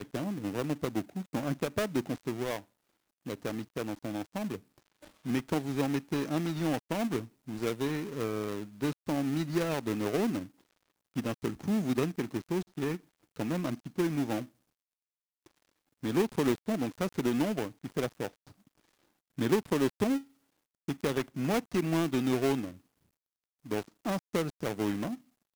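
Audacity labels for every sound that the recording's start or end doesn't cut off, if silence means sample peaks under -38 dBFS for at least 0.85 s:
16.040000	18.280000	sound
19.380000	22.700000	sound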